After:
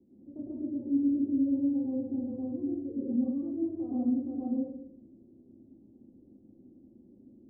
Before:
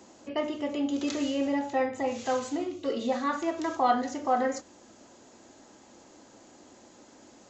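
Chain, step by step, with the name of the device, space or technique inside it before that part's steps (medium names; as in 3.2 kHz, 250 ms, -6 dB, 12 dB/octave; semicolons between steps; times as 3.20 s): next room (low-pass 340 Hz 24 dB/octave; reverberation RT60 0.70 s, pre-delay 105 ms, DRR -6.5 dB); trim -6.5 dB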